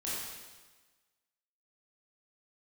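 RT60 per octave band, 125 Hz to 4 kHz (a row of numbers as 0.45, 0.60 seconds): 1.2, 1.3, 1.3, 1.3, 1.3, 1.3 seconds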